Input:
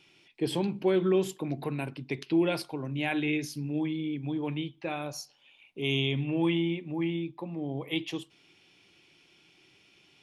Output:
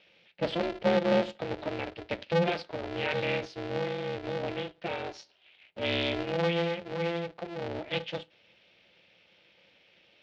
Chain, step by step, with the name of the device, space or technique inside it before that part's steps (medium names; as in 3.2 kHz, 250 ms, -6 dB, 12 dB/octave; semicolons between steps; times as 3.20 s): ring modulator pedal into a guitar cabinet (polarity switched at an audio rate 170 Hz; cabinet simulation 93–4300 Hz, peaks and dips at 140 Hz -7 dB, 260 Hz -5 dB, 590 Hz +4 dB, 1.1 kHz -7 dB)